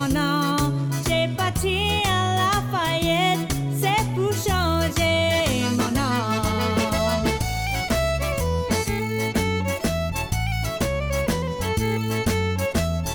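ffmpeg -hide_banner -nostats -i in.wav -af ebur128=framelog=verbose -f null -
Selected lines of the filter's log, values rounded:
Integrated loudness:
  I:         -22.6 LUFS
  Threshold: -32.6 LUFS
Loudness range:
  LRA:         2.8 LU
  Threshold: -42.5 LUFS
  LRA low:   -24.3 LUFS
  LRA high:  -21.5 LUFS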